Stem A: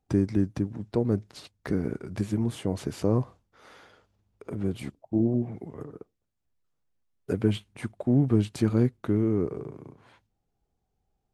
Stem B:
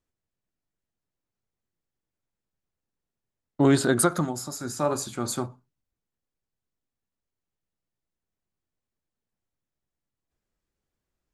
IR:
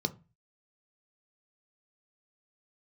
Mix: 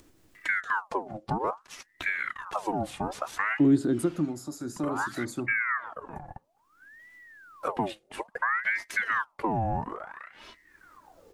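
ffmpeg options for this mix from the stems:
-filter_complex "[0:a]aecho=1:1:3.1:0.92,acompressor=threshold=-21dB:ratio=6,aeval=exprs='val(0)*sin(2*PI*1200*n/s+1200*0.65/0.59*sin(2*PI*0.59*n/s))':channel_layout=same,adelay=350,volume=-0.5dB[link_01];[1:a]equalizer=frequency=310:width_type=o:width=0.5:gain=12,acrossover=split=370[link_02][link_03];[link_03]acompressor=threshold=-37dB:ratio=2.5[link_04];[link_02][link_04]amix=inputs=2:normalize=0,volume=-6dB[link_05];[link_01][link_05]amix=inputs=2:normalize=0,acompressor=mode=upward:threshold=-36dB:ratio=2.5"

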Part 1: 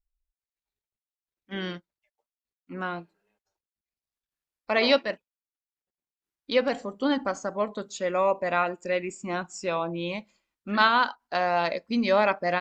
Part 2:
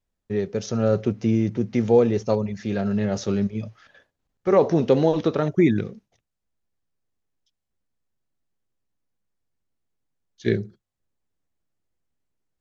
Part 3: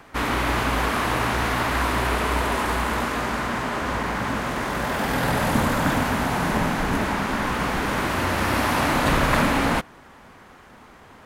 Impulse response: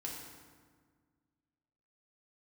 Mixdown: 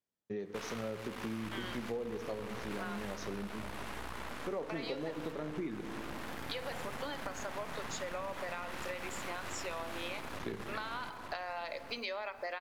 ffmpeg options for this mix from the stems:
-filter_complex "[0:a]highpass=frequency=360:width=0.5412,highpass=frequency=360:width=1.3066,acompressor=threshold=-27dB:ratio=2,acrusher=bits=10:mix=0:aa=0.000001,volume=2.5dB,asplit=3[link_01][link_02][link_03];[link_02]volume=-16dB[link_04];[1:a]highpass=170,volume=-10dB,asplit=2[link_05][link_06];[link_06]volume=-5.5dB[link_07];[2:a]acompressor=threshold=-23dB:ratio=6,aeval=exprs='0.266*(cos(1*acos(clip(val(0)/0.266,-1,1)))-cos(1*PI/2))+0.075*(cos(6*acos(clip(val(0)/0.266,-1,1)))-cos(6*PI/2))':channel_layout=same,adelay=400,volume=-12dB,asplit=2[link_08][link_09];[link_09]volume=-3.5dB[link_10];[link_03]apad=whole_len=514122[link_11];[link_08][link_11]sidechaingate=range=-33dB:threshold=-54dB:ratio=16:detection=peak[link_12];[link_01][link_12]amix=inputs=2:normalize=0,lowshelf=frequency=490:gain=-10.5,acompressor=threshold=-30dB:ratio=6,volume=0dB[link_13];[3:a]atrim=start_sample=2205[link_14];[link_04][link_07]amix=inputs=2:normalize=0[link_15];[link_15][link_14]afir=irnorm=-1:irlink=0[link_16];[link_10]aecho=0:1:890|1780|2670|3560:1|0.28|0.0784|0.022[link_17];[link_05][link_13][link_16][link_17]amix=inputs=4:normalize=0,acompressor=threshold=-37dB:ratio=5"

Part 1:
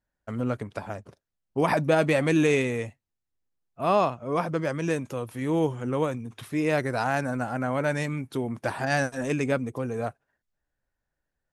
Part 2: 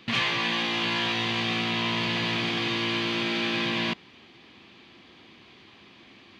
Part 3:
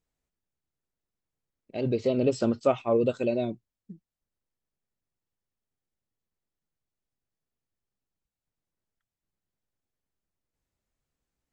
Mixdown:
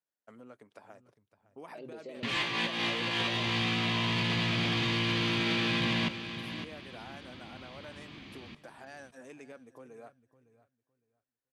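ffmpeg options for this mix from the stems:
ffmpeg -i stem1.wav -i stem2.wav -i stem3.wav -filter_complex "[0:a]acompressor=threshold=-31dB:ratio=3,volume=-14.5dB,asplit=2[link_01][link_02];[link_02]volume=-18dB[link_03];[1:a]asubboost=boost=3:cutoff=210,asoftclip=type=tanh:threshold=-17.5dB,adelay=2150,volume=1.5dB,asplit=2[link_04][link_05];[link_05]volume=-14dB[link_06];[2:a]volume=-13dB,asplit=2[link_07][link_08];[link_08]apad=whole_len=376962[link_09];[link_04][link_09]sidechaincompress=threshold=-43dB:ratio=5:attack=35:release=209[link_10];[link_01][link_07]amix=inputs=2:normalize=0,highpass=270,alimiter=level_in=12dB:limit=-24dB:level=0:latency=1:release=46,volume=-12dB,volume=0dB[link_11];[link_03][link_06]amix=inputs=2:normalize=0,aecho=0:1:559|1118|1677:1|0.18|0.0324[link_12];[link_10][link_11][link_12]amix=inputs=3:normalize=0,alimiter=limit=-22.5dB:level=0:latency=1:release=10" out.wav

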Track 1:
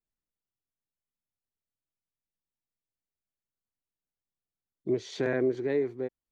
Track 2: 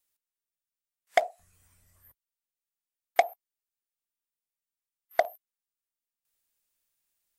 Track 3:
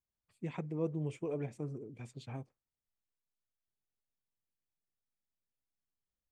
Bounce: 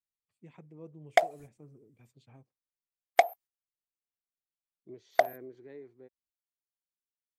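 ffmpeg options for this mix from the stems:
ffmpeg -i stem1.wav -i stem2.wav -i stem3.wav -filter_complex "[0:a]volume=-20dB[link_01];[1:a]agate=range=-26dB:threshold=-52dB:ratio=16:detection=peak,volume=0.5dB[link_02];[2:a]highpass=60,volume=-13dB[link_03];[link_01][link_02][link_03]amix=inputs=3:normalize=0" out.wav

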